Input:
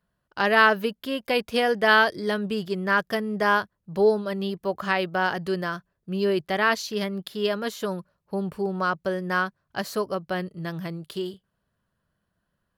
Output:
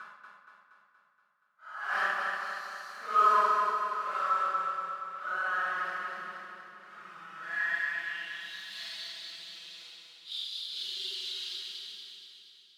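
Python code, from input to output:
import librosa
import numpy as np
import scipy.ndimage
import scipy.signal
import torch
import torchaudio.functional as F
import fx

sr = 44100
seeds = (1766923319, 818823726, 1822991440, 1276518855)

p1 = fx.block_float(x, sr, bits=3)
p2 = scipy.signal.sosfilt(scipy.signal.butter(2, 170.0, 'highpass', fs=sr, output='sos'), p1)
p3 = fx.tilt_shelf(p2, sr, db=-5.0, hz=760.0)
p4 = fx.level_steps(p3, sr, step_db=24)
p5 = p3 + F.gain(torch.from_numpy(p4), 3.0).numpy()
p6 = fx.paulstretch(p5, sr, seeds[0], factor=6.4, window_s=0.05, from_s=9.48)
p7 = fx.filter_sweep_bandpass(p6, sr, from_hz=1300.0, to_hz=3900.0, start_s=7.32, end_s=8.54, q=5.6)
p8 = p7 + fx.echo_feedback(p7, sr, ms=236, feedback_pct=58, wet_db=-4.5, dry=0)
y = fx.room_shoebox(p8, sr, seeds[1], volume_m3=1600.0, walls='mixed', distance_m=1.4)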